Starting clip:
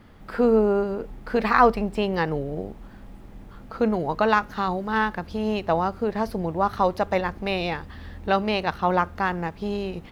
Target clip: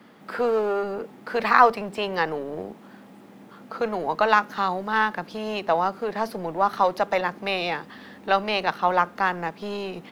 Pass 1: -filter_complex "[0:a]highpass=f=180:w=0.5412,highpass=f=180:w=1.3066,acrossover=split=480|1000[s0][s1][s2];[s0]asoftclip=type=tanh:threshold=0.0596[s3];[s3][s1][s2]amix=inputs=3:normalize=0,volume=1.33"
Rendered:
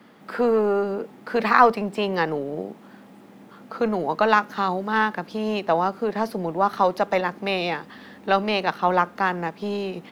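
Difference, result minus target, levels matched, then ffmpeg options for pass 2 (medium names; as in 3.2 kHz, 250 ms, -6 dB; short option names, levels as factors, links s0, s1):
saturation: distortion -7 dB
-filter_complex "[0:a]highpass=f=180:w=0.5412,highpass=f=180:w=1.3066,acrossover=split=480|1000[s0][s1][s2];[s0]asoftclip=type=tanh:threshold=0.0168[s3];[s3][s1][s2]amix=inputs=3:normalize=0,volume=1.33"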